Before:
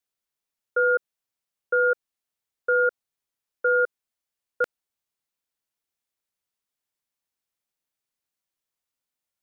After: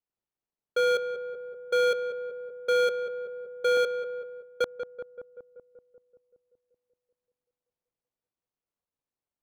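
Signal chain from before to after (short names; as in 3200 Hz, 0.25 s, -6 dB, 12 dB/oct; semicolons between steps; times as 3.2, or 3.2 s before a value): median filter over 25 samples; darkening echo 0.191 s, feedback 70%, low-pass 1400 Hz, level -8 dB; 3.77–4.63 expander -35 dBFS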